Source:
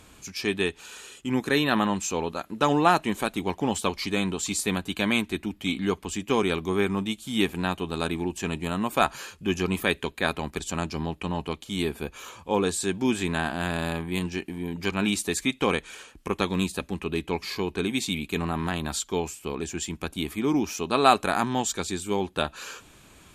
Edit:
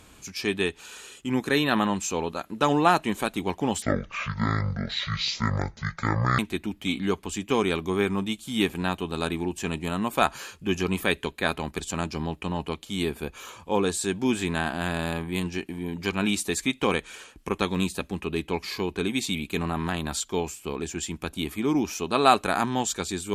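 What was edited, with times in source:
0:03.82–0:05.18: play speed 53%

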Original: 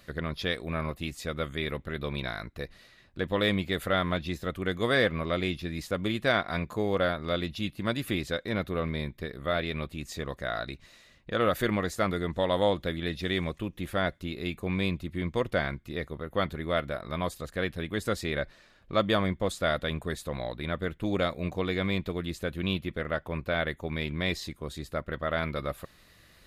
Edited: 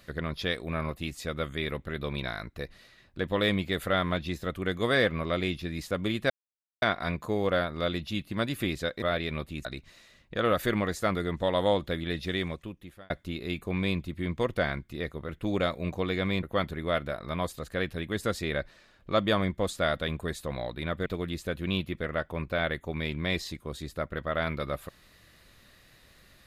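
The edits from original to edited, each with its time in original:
0:06.30: splice in silence 0.52 s
0:08.50–0:09.45: remove
0:10.08–0:10.61: remove
0:13.22–0:14.06: fade out
0:20.88–0:22.02: move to 0:16.25

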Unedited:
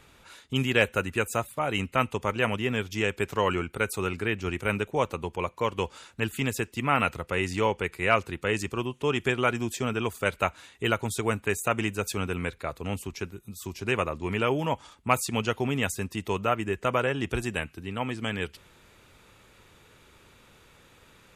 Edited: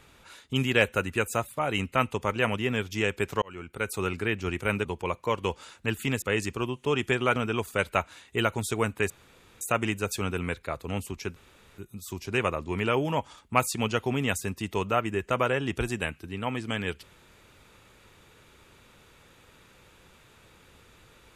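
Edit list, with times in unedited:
0:03.42–0:04.01: fade in
0:04.85–0:05.19: remove
0:06.56–0:08.39: remove
0:09.53–0:09.83: remove
0:11.57: splice in room tone 0.51 s
0:13.32: splice in room tone 0.42 s

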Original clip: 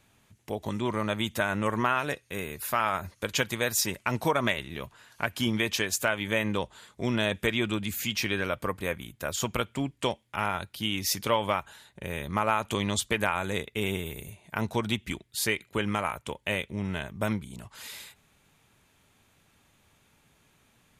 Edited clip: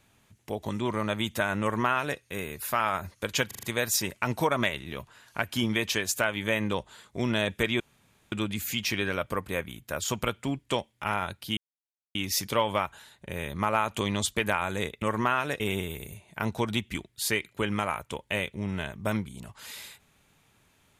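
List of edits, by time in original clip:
0:01.61–0:02.19: duplicate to 0:13.76
0:03.47: stutter 0.04 s, 5 plays
0:07.64: splice in room tone 0.52 s
0:10.89: splice in silence 0.58 s

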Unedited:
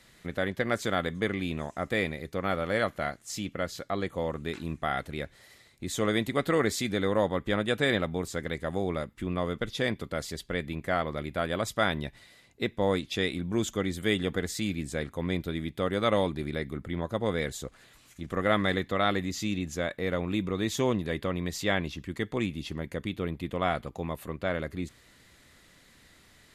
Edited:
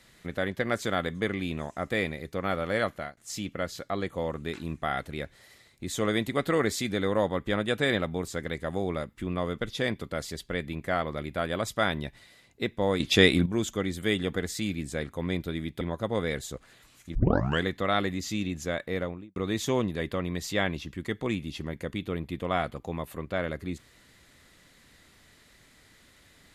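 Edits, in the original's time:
0:02.91–0:03.17: fade out, to −22 dB
0:13.00–0:13.46: clip gain +10 dB
0:15.81–0:16.92: remove
0:18.26: tape start 0.48 s
0:20.02–0:20.47: fade out and dull

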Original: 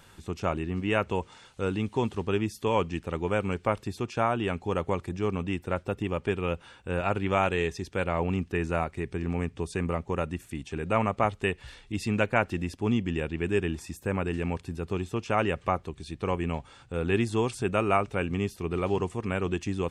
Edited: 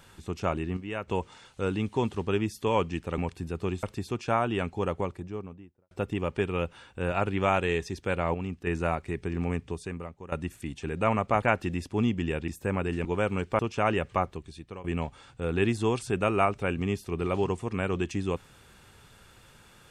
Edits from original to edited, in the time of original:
0:00.77–0:01.08: clip gain −8.5 dB
0:03.18–0:03.72: swap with 0:14.46–0:15.11
0:04.56–0:05.80: fade out and dull
0:08.23–0:08.56: clip gain −5.5 dB
0:09.51–0:10.21: fade out quadratic, to −14 dB
0:11.31–0:12.30: remove
0:13.36–0:13.89: remove
0:15.79–0:16.36: fade out, to −18.5 dB

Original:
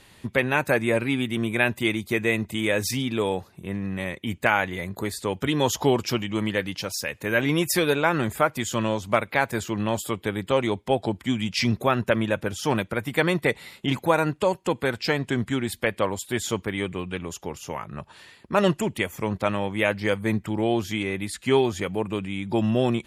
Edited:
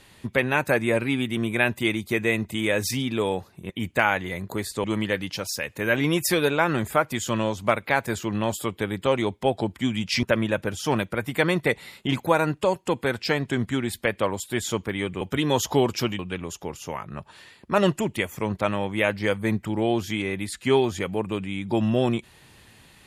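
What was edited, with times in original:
0:03.70–0:04.17: remove
0:05.31–0:06.29: move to 0:17.00
0:11.68–0:12.02: remove

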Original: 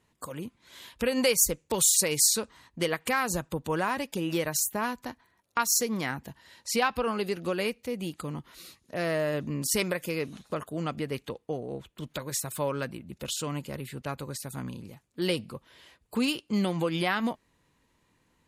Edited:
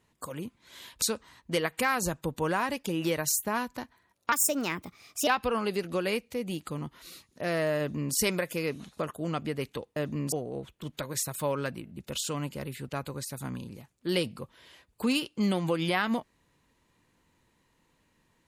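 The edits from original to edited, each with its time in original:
0:01.02–0:02.30: remove
0:05.60–0:06.80: play speed 126%
0:09.31–0:09.67: duplicate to 0:11.49
0:13.02: stutter 0.02 s, 3 plays

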